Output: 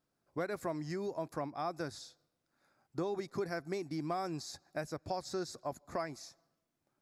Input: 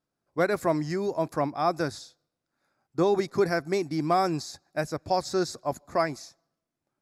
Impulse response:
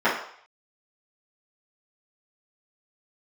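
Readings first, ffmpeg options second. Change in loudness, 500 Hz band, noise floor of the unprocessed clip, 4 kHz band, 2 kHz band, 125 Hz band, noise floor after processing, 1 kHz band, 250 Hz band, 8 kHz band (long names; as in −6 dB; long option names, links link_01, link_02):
−11.5 dB, −12.0 dB, −85 dBFS, −10.0 dB, −12.0 dB, −10.5 dB, −84 dBFS, −12.5 dB, −11.0 dB, −8.5 dB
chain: -af "acompressor=threshold=-42dB:ratio=2.5,volume=1dB"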